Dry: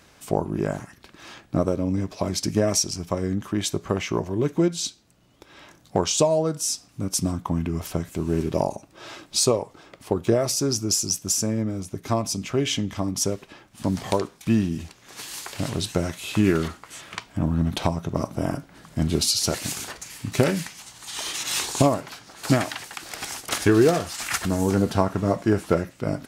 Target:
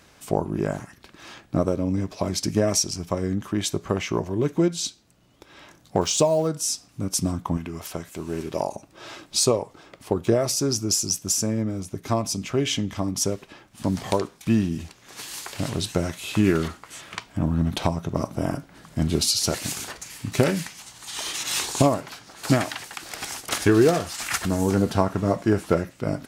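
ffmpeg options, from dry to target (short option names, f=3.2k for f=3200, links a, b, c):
-filter_complex "[0:a]asettb=1/sr,asplit=3[a][b][c];[a]atrim=end=6.014[d];[b]atrim=start=6.01:end=6.48,asetpts=PTS-STARTPTS,afade=t=in:d=0.004:c=qsin,afade=t=out:st=0.466:d=0.004:c=qsin,aeval=exprs='val(0)*gte(abs(val(0)),0.0126)':c=same[e];[c]atrim=start=6.476[f];[d][e]acrossfade=d=0.004:c1=hsin:c2=qsin[g];[g][f]acrossfade=d=0.004:c1=qsin:c2=hsin,asettb=1/sr,asplit=3[h][i][j];[h]atrim=end=7.574[k];[i]atrim=start=7.57:end=8.75,asetpts=PTS-STARTPTS,afade=t=in:d=0.004:c=qsin,afade=t=out:st=1.176:d=0.004:c=qsin,lowshelf=f=330:g=-10.5[l];[j]atrim=start=8.746[m];[k][l]acrossfade=d=0.004:c1=hsin:c2=qsin[n];[n][m]acrossfade=d=0.004:c1=qsin:c2=hsin"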